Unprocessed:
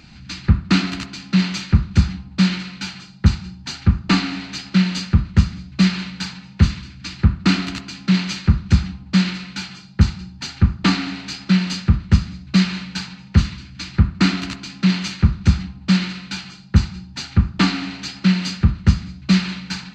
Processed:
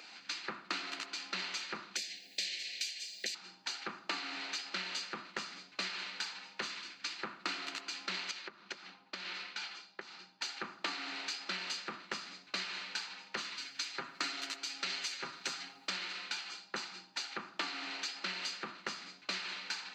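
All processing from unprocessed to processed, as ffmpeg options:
-filter_complex "[0:a]asettb=1/sr,asplit=3[s0][s1][s2];[s0]atrim=end=1.964[s3];[s1]atrim=start=1.96:end=3.35,asetpts=PTS-STARTPTS,afade=t=in:d=0.004:c=qsin,afade=t=out:st=1.386:d=0.004:c=qsin,aemphasis=mode=production:type=riaa,acompressor=mode=upward:threshold=0.0158:ratio=2.5:attack=3.2:release=140:knee=2.83:detection=peak,asuperstop=centerf=1100:order=8:qfactor=1[s4];[s2]atrim=start=3.346[s5];[s3][s4]acrossfade=d=0.004:c1=hsin:c2=qsin[s6];[s6][s5]acrossfade=d=0.004:c1=qsin:c2=hsin,asettb=1/sr,asplit=3[s7][s8][s9];[s7]atrim=end=8.314[s10];[s8]atrim=start=8.31:end=10.41,asetpts=PTS-STARTPTS,afade=t=in:d=0.004:c=qsin,afade=t=out:st=2.096:d=0.004:c=qsin,lowpass=5800,acompressor=threshold=0.0562:ratio=6:attack=3.2:release=140:knee=1:detection=peak,flanger=delay=1.3:depth=4:regen=-77:speed=1.5:shape=sinusoidal[s11];[s9]atrim=start=10.406[s12];[s10][s11]acrossfade=d=0.004:c1=hsin:c2=qsin[s13];[s13][s12]acrossfade=d=0.004:c1=qsin:c2=hsin,asettb=1/sr,asplit=3[s14][s15][s16];[s14]atrim=end=13.574[s17];[s15]atrim=start=13.57:end=15.9,asetpts=PTS-STARTPTS,afade=t=in:d=0.004:c=qsin,afade=t=out:st=2.326:d=0.004:c=qsin,aemphasis=mode=production:type=cd,aecho=1:1:7.3:0.65,atrim=end_sample=102753[s18];[s16]atrim=start=15.896[s19];[s17][s18]acrossfade=d=0.004:c1=hsin:c2=qsin[s20];[s20][s19]acrossfade=d=0.004:c1=qsin:c2=hsin,highpass=f=410:w=0.5412,highpass=f=410:w=1.3066,acompressor=threshold=0.02:ratio=6,volume=0.75"

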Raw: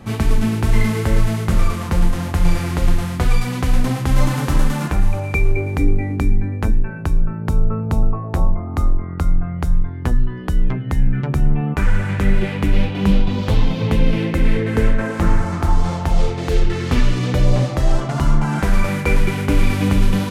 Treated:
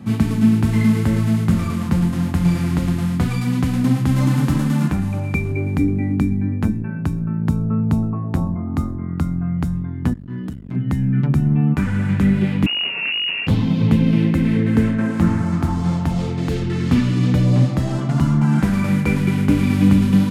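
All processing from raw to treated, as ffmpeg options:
-filter_complex "[0:a]asettb=1/sr,asplit=3[s0][s1][s2];[s0]atrim=end=10.134[s3];[s1]atrim=start=10.13:end=10.76,asetpts=PTS-STARTPTS,afade=t=in:d=0.004:c=qsin,afade=t=out:st=0.626:d=0.004:c=qsin,acompressor=threshold=0.112:ratio=4:attack=3.2:release=140:knee=1:detection=peak,tremolo=f=84:d=0.261,asoftclip=type=hard:threshold=0.0562[s4];[s2]atrim=start=10.756[s5];[s3][s4]acrossfade=d=0.004:c1=hsin:c2=qsin[s6];[s6][s5]acrossfade=d=0.004:c1=qsin:c2=hsin,asettb=1/sr,asplit=3[s7][s8][s9];[s7]atrim=end=12.664[s10];[s8]atrim=start=12.66:end=13.47,asetpts=PTS-STARTPTS,afade=t=in:d=0.004:c=qsin,afade=t=out:st=0.806:d=0.004:c=qsin,volume=8.41,asoftclip=hard,volume=0.119,lowpass=f=2500:t=q:w=0.5098,lowpass=f=2500:t=q:w=0.6013,lowpass=f=2500:t=q:w=0.9,lowpass=f=2500:t=q:w=2.563,afreqshift=-2900,equalizer=f=550:w=0.33:g=5[s11];[s9]atrim=start=13.466[s12];[s10][s11]acrossfade=d=0.004:c1=hsin:c2=qsin[s13];[s13][s12]acrossfade=d=0.004:c1=qsin:c2=hsin,highpass=120,lowshelf=f=330:t=q:w=1.5:g=8.5,bandreject=f=5900:w=27,volume=0.668"

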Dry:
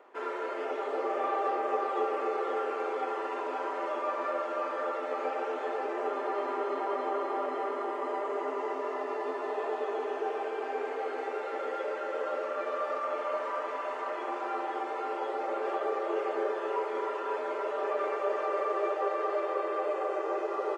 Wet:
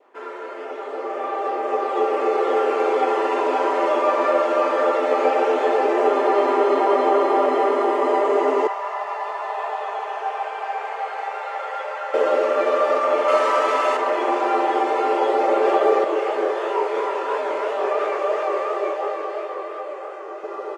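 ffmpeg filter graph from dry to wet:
-filter_complex "[0:a]asettb=1/sr,asplit=3[s0][s1][s2];[s0]atrim=end=8.674[s3];[s1]atrim=start=8.67:end=12.14,asetpts=PTS-STARTPTS,afade=t=in:d=0.004:c=qsin,afade=t=out:st=3.466:d=0.004:c=qsin,highpass=f=760:w=0.5412,highpass=f=760:w=1.3066,highshelf=f=2000:g=-8.5[s4];[s2]atrim=start=12.136[s5];[s3][s4]acrossfade=d=0.004:c1=hsin:c2=qsin[s6];[s6][s5]acrossfade=d=0.004:c1=qsin:c2=hsin,asettb=1/sr,asplit=3[s7][s8][s9];[s7]atrim=end=13.284[s10];[s8]atrim=start=13.28:end=13.97,asetpts=PTS-STARTPTS,afade=t=in:d=0.004:c=qsin,afade=t=out:st=0.686:d=0.004:c=qsin,aeval=exprs='val(0)+0.0158*sin(2*PI*1300*n/s)':c=same,highshelf=f=2600:g=8.5[s11];[s9]atrim=start=13.966[s12];[s10][s11]acrossfade=d=0.004:c1=hsin:c2=qsin[s13];[s13][s12]acrossfade=d=0.004:c1=qsin:c2=hsin,asettb=1/sr,asplit=3[s14][s15][s16];[s14]atrim=end=16.044[s17];[s15]atrim=start=16.04:end=20.44,asetpts=PTS-STARTPTS,afade=t=in:d=0.004:c=qsin,afade=t=out:st=4.396:d=0.004:c=qsin,highpass=190,lowshelf=f=260:g=-10,flanger=delay=19:depth=7.3:speed=2.9[s18];[s16]atrim=start=20.436[s19];[s17][s18]acrossfade=d=0.004:c1=hsin:c2=qsin[s20];[s20][s19]acrossfade=d=0.004:c1=qsin:c2=hsin,dynaudnorm=f=320:g=13:m=5.01,adynamicequalizer=threshold=0.0158:dfrequency=1400:dqfactor=1.7:tfrequency=1400:tqfactor=1.7:attack=5:release=100:ratio=0.375:range=2.5:mode=cutabove:tftype=bell,volume=1.19"

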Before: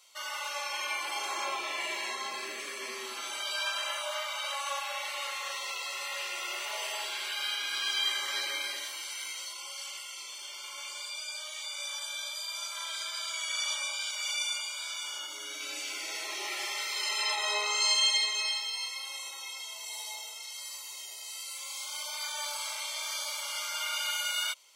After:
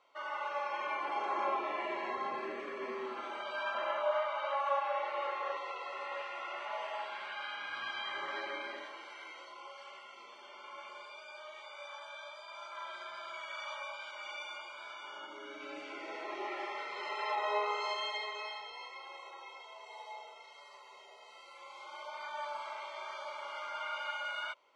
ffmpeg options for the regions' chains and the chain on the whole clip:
-filter_complex "[0:a]asettb=1/sr,asplit=3[s0][s1][s2];[s0]atrim=end=3.744[s3];[s1]atrim=start=3.74:end=5.57,asetpts=PTS-STARTPTS,afade=t=in:d=0.004:c=qsin,afade=t=out:st=1.826:d=0.004:c=qsin,highpass=300,lowpass=7300,lowshelf=f=450:g=11[s4];[s2]atrim=start=5.566[s5];[s3][s4]acrossfade=d=0.004:c1=hsin:c2=qsin[s6];[s6][s5]acrossfade=d=0.004:c1=qsin:c2=hsin,asettb=1/sr,asplit=3[s7][s8][s9];[s7]atrim=end=6.224[s10];[s8]atrim=start=6.22:end=8.14,asetpts=PTS-STARTPTS,afade=t=in:d=0.004:c=qsin,afade=t=out:st=1.916:d=0.004:c=qsin,equalizer=f=400:w=2.3:g=-11,bandreject=f=50:t=h:w=6,bandreject=f=100:t=h:w=6,bandreject=f=150:t=h:w=6,bandreject=f=200:t=h:w=6,bandreject=f=250:t=h:w=6,bandreject=f=300:t=h:w=6,bandreject=f=350:t=h:w=6,bandreject=f=400:t=h:w=6[s11];[s9]atrim=start=8.136[s12];[s10][s11]acrossfade=d=0.004:c1=hsin:c2=qsin[s13];[s13][s12]acrossfade=d=0.004:c1=qsin:c2=hsin,lowpass=1200,lowshelf=f=340:g=3.5,bandreject=f=50:t=h:w=6,bandreject=f=100:t=h:w=6,volume=1.5"

